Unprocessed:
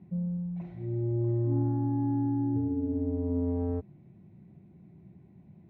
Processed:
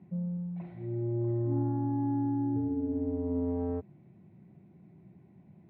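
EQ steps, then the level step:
high-pass filter 87 Hz
high-frequency loss of the air 210 metres
low-shelf EQ 450 Hz −6 dB
+3.5 dB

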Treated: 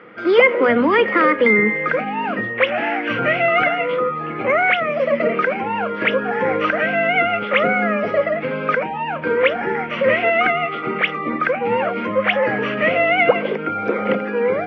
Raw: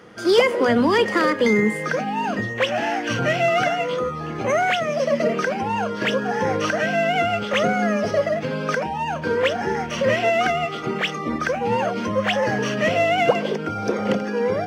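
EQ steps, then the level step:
loudspeaker in its box 150–3,100 Hz, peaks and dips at 300 Hz +3 dB, 510 Hz +4 dB, 1,300 Hz +7 dB, 2,200 Hz +10 dB
0.0 dB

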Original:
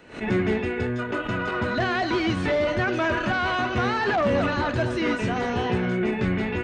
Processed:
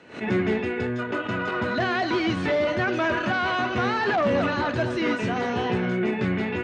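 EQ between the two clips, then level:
band-pass filter 110–7,500 Hz
0.0 dB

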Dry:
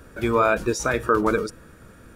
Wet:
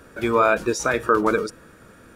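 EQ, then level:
low-shelf EQ 120 Hz −11 dB
high-shelf EQ 9,900 Hz −4 dB
+2.0 dB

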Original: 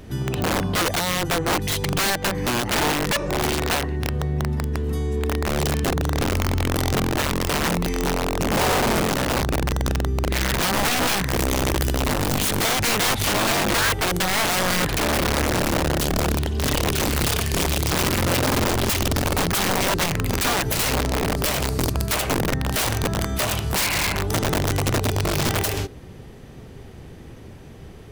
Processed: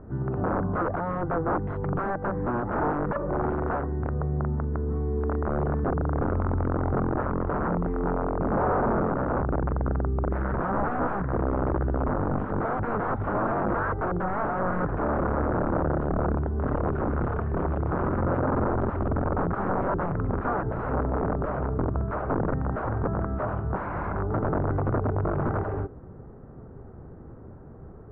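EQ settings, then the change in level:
Chebyshev low-pass filter 1,400 Hz, order 4
−2.5 dB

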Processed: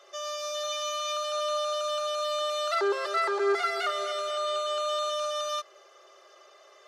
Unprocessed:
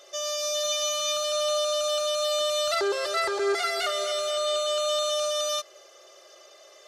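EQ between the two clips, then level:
Chebyshev high-pass with heavy ripple 280 Hz, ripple 6 dB
low-shelf EQ 440 Hz −8 dB
high-shelf EQ 3,700 Hz −10.5 dB
+4.5 dB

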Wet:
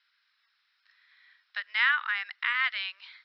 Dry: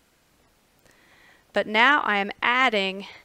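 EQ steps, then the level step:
high-pass filter 1,500 Hz 24 dB per octave
Chebyshev low-pass with heavy ripple 5,400 Hz, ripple 6 dB
−1.5 dB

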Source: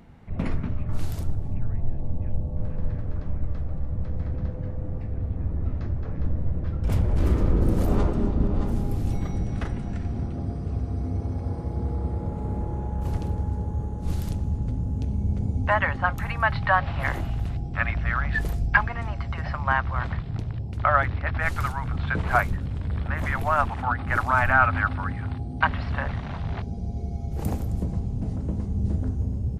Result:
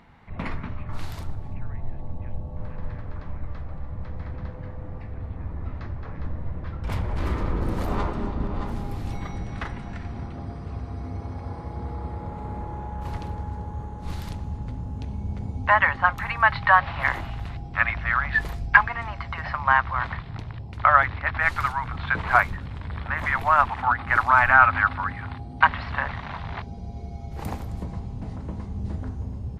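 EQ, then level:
octave-band graphic EQ 1,000/2,000/4,000 Hz +10/+8/+7 dB
−5.5 dB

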